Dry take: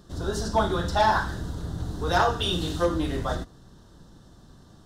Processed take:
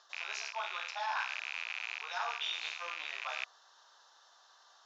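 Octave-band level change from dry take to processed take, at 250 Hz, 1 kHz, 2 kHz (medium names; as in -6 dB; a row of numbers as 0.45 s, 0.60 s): under -40 dB, -14.0 dB, -5.0 dB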